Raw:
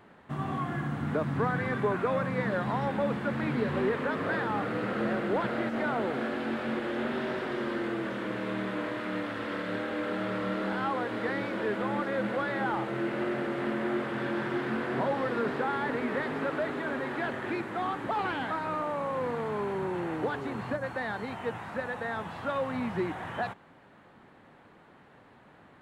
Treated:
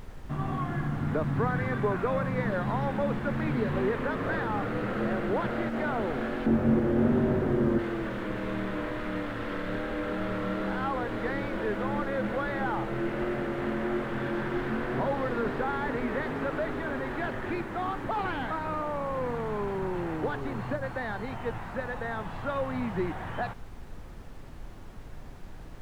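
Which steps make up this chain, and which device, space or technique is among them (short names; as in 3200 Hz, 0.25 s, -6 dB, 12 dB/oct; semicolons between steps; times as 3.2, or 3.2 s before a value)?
6.46–7.79 tilt -4.5 dB/oct; car interior (bell 100 Hz +6 dB 0.95 oct; high shelf 3900 Hz -5.5 dB; brown noise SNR 11 dB)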